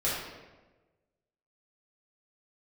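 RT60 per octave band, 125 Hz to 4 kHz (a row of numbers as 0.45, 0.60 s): 1.4, 1.3, 1.4, 1.1, 1.0, 0.80 s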